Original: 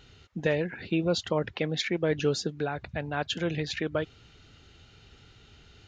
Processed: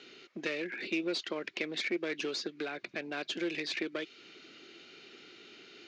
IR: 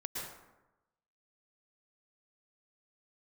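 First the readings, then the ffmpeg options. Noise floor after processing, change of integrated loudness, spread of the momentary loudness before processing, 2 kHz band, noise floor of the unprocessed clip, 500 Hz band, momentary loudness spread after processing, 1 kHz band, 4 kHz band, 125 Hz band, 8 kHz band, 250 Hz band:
−59 dBFS, −6.0 dB, 6 LU, −1.5 dB, −57 dBFS, −9.0 dB, 18 LU, −9.5 dB, −3.0 dB, −22.0 dB, −6.5 dB, −6.0 dB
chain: -filter_complex "[0:a]acrossover=split=1100|2300|4800[link_01][link_02][link_03][link_04];[link_01]acompressor=threshold=-40dB:ratio=4[link_05];[link_02]acompressor=threshold=-47dB:ratio=4[link_06];[link_03]acompressor=threshold=-42dB:ratio=4[link_07];[link_04]acompressor=threshold=-47dB:ratio=4[link_08];[link_05][link_06][link_07][link_08]amix=inputs=4:normalize=0,aeval=exprs='clip(val(0),-1,0.01)':channel_layout=same,highpass=frequency=230:width=0.5412,highpass=frequency=230:width=1.3066,equalizer=frequency=350:width_type=q:width=4:gain=9,equalizer=frequency=860:width_type=q:width=4:gain=-7,equalizer=frequency=2300:width_type=q:width=4:gain=7,equalizer=frequency=4500:width_type=q:width=4:gain=3,lowpass=frequency=6700:width=0.5412,lowpass=frequency=6700:width=1.3066,volume=2.5dB"

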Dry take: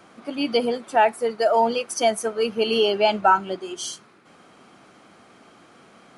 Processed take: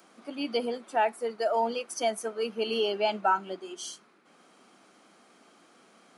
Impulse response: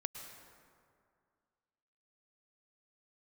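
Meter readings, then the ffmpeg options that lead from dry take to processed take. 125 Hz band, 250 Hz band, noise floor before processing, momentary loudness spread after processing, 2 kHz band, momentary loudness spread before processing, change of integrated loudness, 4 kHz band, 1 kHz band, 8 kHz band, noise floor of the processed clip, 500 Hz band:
can't be measured, −8.5 dB, −52 dBFS, 12 LU, −8.0 dB, 12 LU, −8.0 dB, −8.0 dB, −8.0 dB, −8.0 dB, −61 dBFS, −8.0 dB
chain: -filter_complex "[0:a]highpass=frequency=180:width=0.5412,highpass=frequency=180:width=1.3066,acrossover=split=4300[link_01][link_02];[link_02]acompressor=mode=upward:threshold=-54dB:ratio=2.5[link_03];[link_01][link_03]amix=inputs=2:normalize=0,volume=-8dB"

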